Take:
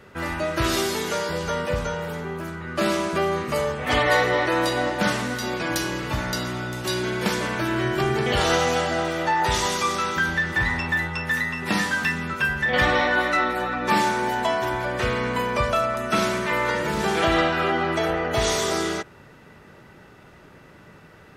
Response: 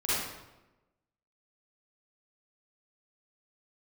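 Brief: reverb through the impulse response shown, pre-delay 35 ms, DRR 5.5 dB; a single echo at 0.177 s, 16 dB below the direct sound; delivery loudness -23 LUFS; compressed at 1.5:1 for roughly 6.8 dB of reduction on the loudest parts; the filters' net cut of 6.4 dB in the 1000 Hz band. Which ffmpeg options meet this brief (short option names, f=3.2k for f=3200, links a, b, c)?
-filter_complex "[0:a]equalizer=f=1k:t=o:g=-8.5,acompressor=threshold=-38dB:ratio=1.5,aecho=1:1:177:0.158,asplit=2[a][b];[1:a]atrim=start_sample=2205,adelay=35[c];[b][c]afir=irnorm=-1:irlink=0,volume=-15dB[d];[a][d]amix=inputs=2:normalize=0,volume=6.5dB"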